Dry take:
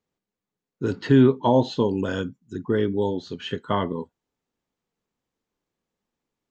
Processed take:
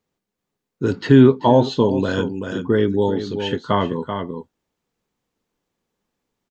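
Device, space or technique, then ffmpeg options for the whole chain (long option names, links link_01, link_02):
ducked delay: -filter_complex "[0:a]asplit=3[link_01][link_02][link_03];[link_02]adelay=385,volume=-5.5dB[link_04];[link_03]apad=whole_len=303643[link_05];[link_04][link_05]sidechaincompress=threshold=-26dB:ratio=8:attack=42:release=669[link_06];[link_01][link_06]amix=inputs=2:normalize=0,volume=5dB"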